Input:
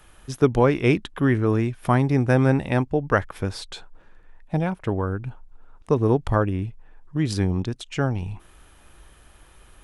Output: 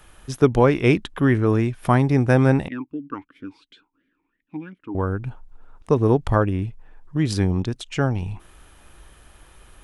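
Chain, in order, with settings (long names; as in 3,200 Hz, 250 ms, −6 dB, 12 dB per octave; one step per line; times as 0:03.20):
0:02.68–0:04.95: formant filter swept between two vowels i-u 2.9 Hz
level +2 dB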